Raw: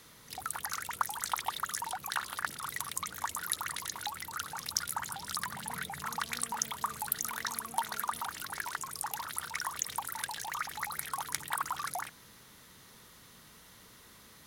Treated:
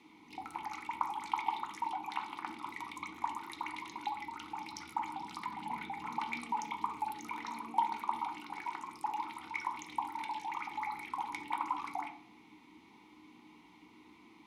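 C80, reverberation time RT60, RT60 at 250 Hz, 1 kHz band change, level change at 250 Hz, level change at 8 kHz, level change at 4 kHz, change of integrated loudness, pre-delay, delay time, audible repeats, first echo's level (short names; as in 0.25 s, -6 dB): 13.0 dB, 0.60 s, 0.70 s, +1.5 dB, +5.0 dB, -20.0 dB, -10.5 dB, -3.5 dB, 3 ms, none, none, none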